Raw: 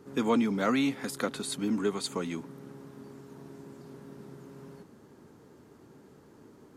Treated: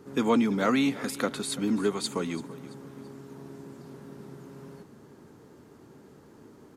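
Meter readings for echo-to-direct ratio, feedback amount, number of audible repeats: −17.5 dB, 40%, 3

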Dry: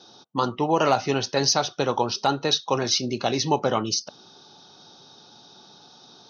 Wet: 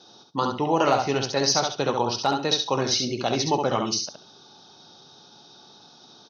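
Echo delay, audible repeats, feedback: 68 ms, 3, 20%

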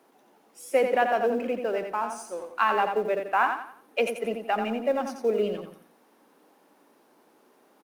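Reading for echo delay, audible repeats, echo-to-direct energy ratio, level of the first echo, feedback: 87 ms, 4, −6.0 dB, −6.5 dB, 35%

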